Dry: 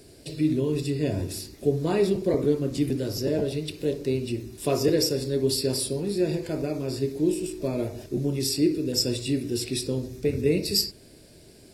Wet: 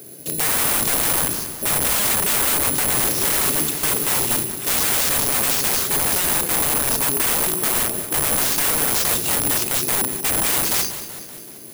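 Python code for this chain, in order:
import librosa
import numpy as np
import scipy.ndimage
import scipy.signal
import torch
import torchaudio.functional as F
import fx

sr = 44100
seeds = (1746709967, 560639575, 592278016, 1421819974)

p1 = fx.octave_divider(x, sr, octaves=1, level_db=3.0)
p2 = scipy.signal.sosfilt(scipy.signal.butter(2, 190.0, 'highpass', fs=sr, output='sos'), p1)
p3 = fx.high_shelf(p2, sr, hz=4700.0, db=-9.5)
p4 = fx.over_compress(p3, sr, threshold_db=-22.0, ratio=-0.5)
p5 = p3 + F.gain(torch.from_numpy(p4), 0.0).numpy()
p6 = fx.quant_dither(p5, sr, seeds[0], bits=6, dither='triangular', at=(2.96, 4.43), fade=0.02)
p7 = (np.mod(10.0 ** (20.5 / 20.0) * p6 + 1.0, 2.0) - 1.0) / 10.0 ** (20.5 / 20.0)
p8 = p7 + fx.echo_feedback(p7, sr, ms=190, feedback_pct=59, wet_db=-12.5, dry=0)
y = (np.kron(p8[::4], np.eye(4)[0]) * 4)[:len(p8)]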